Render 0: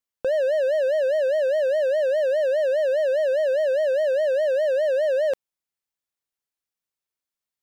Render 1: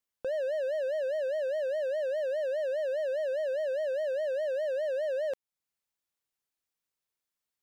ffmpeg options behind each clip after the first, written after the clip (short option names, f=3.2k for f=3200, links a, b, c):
-af "alimiter=level_in=2dB:limit=-24dB:level=0:latency=1:release=360,volume=-2dB"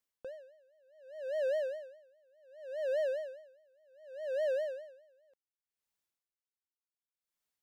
-af "aeval=exprs='val(0)*pow(10,-37*(0.5-0.5*cos(2*PI*0.67*n/s))/20)':c=same"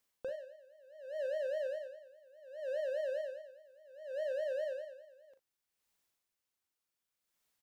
-filter_complex "[0:a]alimiter=level_in=14dB:limit=-24dB:level=0:latency=1:release=488,volume=-14dB,asplit=2[a][b];[b]aecho=0:1:39|56:0.335|0.158[c];[a][c]amix=inputs=2:normalize=0,volume=6.5dB"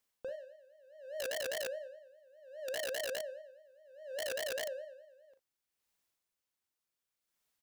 -af "aeval=exprs='(mod(35.5*val(0)+1,2)-1)/35.5':c=same,volume=-1.5dB"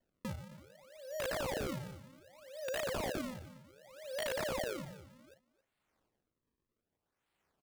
-af "acrusher=samples=35:mix=1:aa=0.000001:lfo=1:lforange=56:lforate=0.65,aecho=1:1:270:0.126,volume=1dB"